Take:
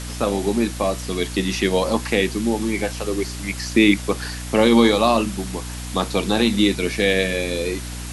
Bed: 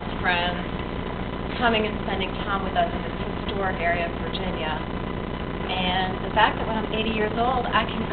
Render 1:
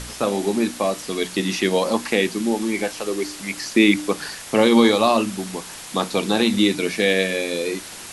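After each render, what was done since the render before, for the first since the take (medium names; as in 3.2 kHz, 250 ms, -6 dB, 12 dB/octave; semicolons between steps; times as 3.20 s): de-hum 60 Hz, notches 5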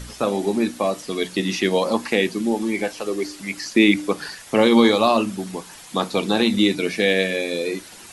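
noise reduction 8 dB, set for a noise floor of -37 dBFS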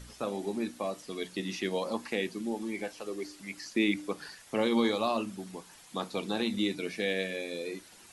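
trim -12.5 dB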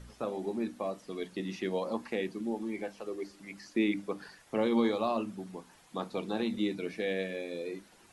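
treble shelf 2.2 kHz -10 dB; hum notches 50/100/150/200/250/300 Hz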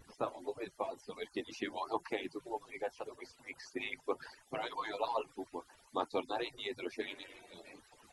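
harmonic-percussive separation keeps percussive; peaking EQ 890 Hz +6 dB 0.48 oct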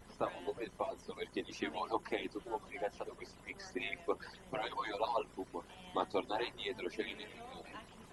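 add bed -30 dB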